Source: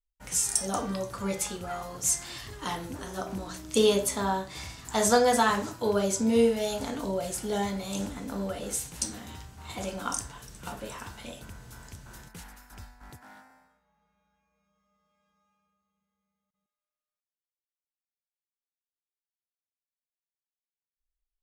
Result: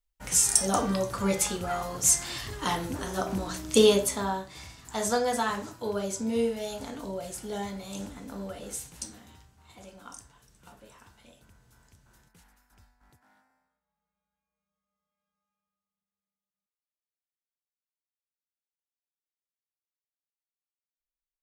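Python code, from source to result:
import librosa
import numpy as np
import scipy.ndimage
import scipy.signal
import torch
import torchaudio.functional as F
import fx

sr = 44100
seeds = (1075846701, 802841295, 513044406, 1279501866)

y = fx.gain(x, sr, db=fx.line((3.72, 4.5), (4.56, -5.0), (8.83, -5.0), (9.67, -14.0)))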